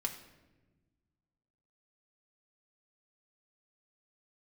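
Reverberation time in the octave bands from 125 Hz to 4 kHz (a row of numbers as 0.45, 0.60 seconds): 2.2, 1.9, 1.5, 0.95, 0.95, 0.75 seconds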